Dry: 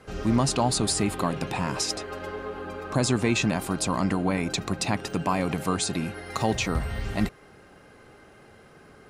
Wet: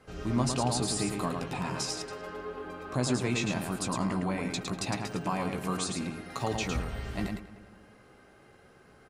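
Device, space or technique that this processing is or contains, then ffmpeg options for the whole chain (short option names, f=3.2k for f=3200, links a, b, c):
slapback doubling: -filter_complex "[0:a]asplit=2[a][b];[b]adelay=193,lowpass=f=3.1k:p=1,volume=-16dB,asplit=2[c][d];[d]adelay=193,lowpass=f=3.1k:p=1,volume=0.52,asplit=2[e][f];[f]adelay=193,lowpass=f=3.1k:p=1,volume=0.52,asplit=2[g][h];[h]adelay=193,lowpass=f=3.1k:p=1,volume=0.52,asplit=2[i][j];[j]adelay=193,lowpass=f=3.1k:p=1,volume=0.52[k];[a][c][e][g][i][k]amix=inputs=6:normalize=0,asplit=3[l][m][n];[m]adelay=16,volume=-6.5dB[o];[n]adelay=109,volume=-4.5dB[p];[l][o][p]amix=inputs=3:normalize=0,volume=-7.5dB"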